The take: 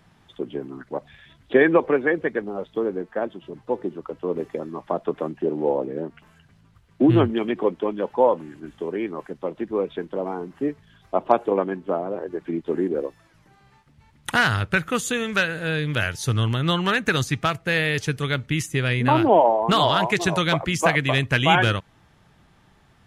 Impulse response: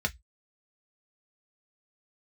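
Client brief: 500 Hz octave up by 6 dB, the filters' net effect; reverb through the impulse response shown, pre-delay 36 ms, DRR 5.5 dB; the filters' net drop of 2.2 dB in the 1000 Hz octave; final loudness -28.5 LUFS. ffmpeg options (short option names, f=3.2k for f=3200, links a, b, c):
-filter_complex "[0:a]equalizer=f=500:t=o:g=9,equalizer=f=1k:t=o:g=-7,asplit=2[a][b];[1:a]atrim=start_sample=2205,adelay=36[c];[b][c]afir=irnorm=-1:irlink=0,volume=-12.5dB[d];[a][d]amix=inputs=2:normalize=0,volume=-9.5dB"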